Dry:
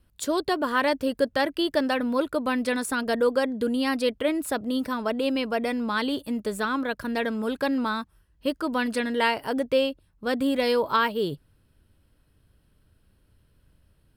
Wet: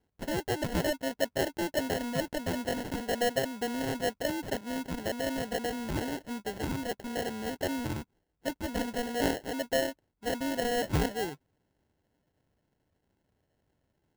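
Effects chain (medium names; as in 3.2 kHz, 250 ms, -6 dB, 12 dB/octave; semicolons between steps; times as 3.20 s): high-pass 300 Hz 6 dB/octave; sample-rate reducer 1.2 kHz, jitter 0%; trim -5 dB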